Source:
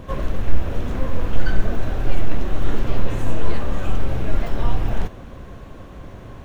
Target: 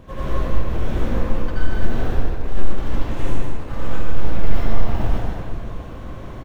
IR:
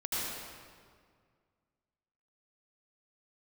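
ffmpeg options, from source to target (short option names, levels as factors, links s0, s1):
-filter_complex "[0:a]asoftclip=type=hard:threshold=0.168,aecho=1:1:154:0.501[s0];[1:a]atrim=start_sample=2205[s1];[s0][s1]afir=irnorm=-1:irlink=0,volume=0.668"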